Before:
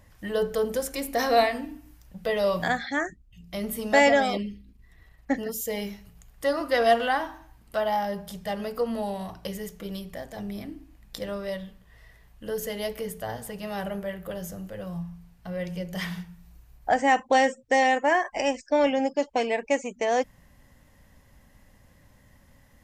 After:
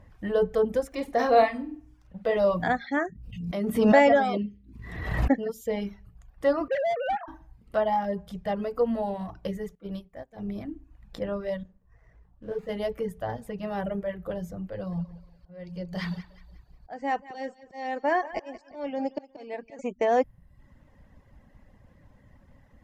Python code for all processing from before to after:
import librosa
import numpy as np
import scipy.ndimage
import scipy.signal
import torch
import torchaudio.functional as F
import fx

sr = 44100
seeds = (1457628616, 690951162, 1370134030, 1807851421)

y = fx.chain(x, sr, fx.median_filter(points=3),
    fx.low_shelf(hz=150.0, db=-6.5),
    fx.room_flutter(wall_m=8.4, rt60_s=0.4), at=(0.87, 2.37))
y = fx.chain(y, sr, fx.highpass(hz=91.0, slope=12),
    fx.pre_swell(db_per_s=45.0), at=(2.97, 5.32))
y = fx.chain(y, sr, fx.sine_speech(),
    fx.clip_hard(threshold_db=-25.5),
    fx.band_squash(depth_pct=40), at=(6.68, 7.28))
y = fx.chain(y, sr, fx.transient(attack_db=-3, sustain_db=1),
    fx.upward_expand(threshold_db=-44.0, expansion=2.5), at=(9.75, 10.56))
y = fx.chain(y, sr, fx.median_filter(points=15),
    fx.detune_double(cents=59), at=(11.63, 12.69))
y = fx.chain(y, sr, fx.peak_eq(hz=4500.0, db=15.0, octaves=0.28),
    fx.auto_swell(attack_ms=626.0),
    fx.echo_feedback(ms=181, feedback_pct=35, wet_db=-12.0), at=(14.72, 19.79))
y = fx.lowpass(y, sr, hz=1100.0, slope=6)
y = fx.dereverb_blind(y, sr, rt60_s=0.65)
y = y * 10.0 ** (3.5 / 20.0)